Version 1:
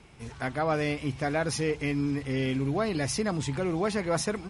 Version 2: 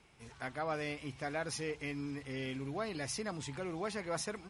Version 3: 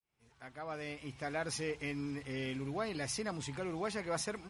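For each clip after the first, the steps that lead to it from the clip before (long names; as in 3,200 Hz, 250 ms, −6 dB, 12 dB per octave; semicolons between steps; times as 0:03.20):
low-shelf EQ 440 Hz −6.5 dB; level −7.5 dB
fade in at the beginning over 1.49 s; level +1 dB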